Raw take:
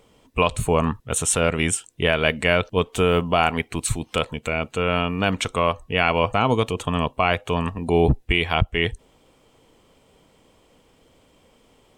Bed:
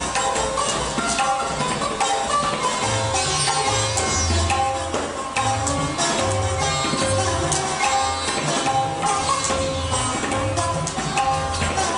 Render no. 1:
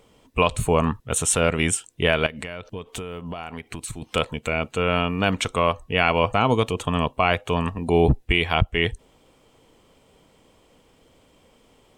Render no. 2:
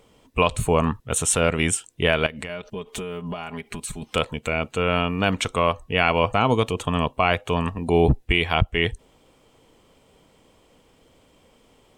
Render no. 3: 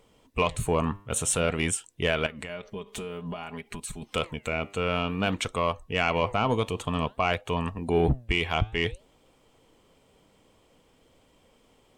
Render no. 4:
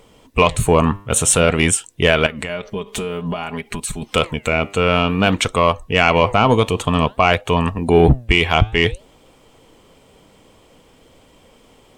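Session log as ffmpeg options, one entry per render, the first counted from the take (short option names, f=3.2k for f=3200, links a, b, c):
-filter_complex "[0:a]asettb=1/sr,asplit=3[a][b][c];[a]atrim=end=2.264[d];[b]atrim=start=2.26:end=4.02,asetpts=PTS-STARTPTS,afade=t=in:d=0.004:c=qsin,afade=t=out:st=1.756:d=0.004:c=qsin,acompressor=threshold=-28dB:ratio=20:attack=3.2:release=140:knee=1:detection=peak[e];[c]atrim=start=4.016[f];[d][e]acrossfade=d=0.004:c1=hsin:c2=qsin[g];[g][f]acrossfade=d=0.004:c1=qsin:c2=hsin"
-filter_complex "[0:a]asettb=1/sr,asplit=3[a][b][c];[a]atrim=end=2.494[d];[b]atrim=start=2.49:end=4.1,asetpts=PTS-STARTPTS,afade=t=in:d=0.004:c=qsin,afade=t=out:st=1.606:d=0.004:c=qsin,aecho=1:1:4.9:0.65,atrim=end_sample=71001[e];[c]atrim=start=4.096[f];[d][e]acrossfade=d=0.004:c1=hsin:c2=qsin[g];[g][f]acrossfade=d=0.004:c1=qsin:c2=hsin"
-af "asoftclip=type=tanh:threshold=-7dB,flanger=delay=1:depth=9.1:regen=88:speed=0.53:shape=sinusoidal"
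-af "volume=11.5dB,alimiter=limit=-2dB:level=0:latency=1"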